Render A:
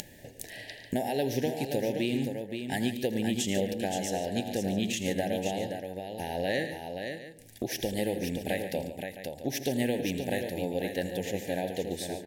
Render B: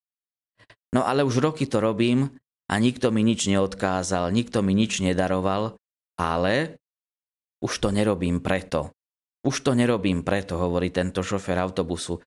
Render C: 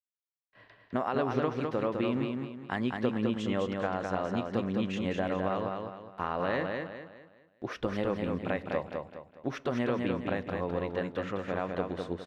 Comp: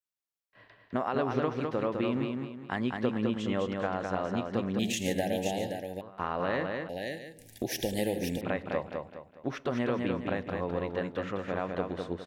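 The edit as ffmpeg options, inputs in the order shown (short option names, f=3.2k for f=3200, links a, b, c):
-filter_complex "[0:a]asplit=2[a][b];[2:a]asplit=3[c][d][e];[c]atrim=end=4.792[f];[a]atrim=start=4.788:end=6.012[g];[d]atrim=start=6.008:end=6.892[h];[b]atrim=start=6.888:end=8.412[i];[e]atrim=start=8.408[j];[f][g]acrossfade=d=0.004:c1=hsin:c2=hsin[k];[k][h]acrossfade=d=0.004:c1=hsin:c2=hsin[l];[l][i]acrossfade=d=0.004:c1=hsin:c2=hsin[m];[m][j]acrossfade=d=0.004:c1=hsin:c2=hsin"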